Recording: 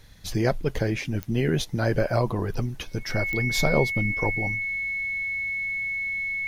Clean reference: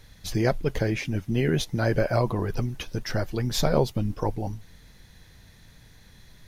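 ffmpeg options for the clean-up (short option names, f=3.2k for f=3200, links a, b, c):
-af "adeclick=t=4,bandreject=f=2.2k:w=30"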